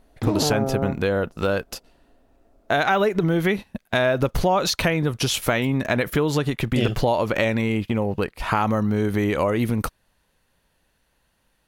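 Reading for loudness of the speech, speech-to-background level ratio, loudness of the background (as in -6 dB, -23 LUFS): -22.5 LUFS, 4.0 dB, -26.5 LUFS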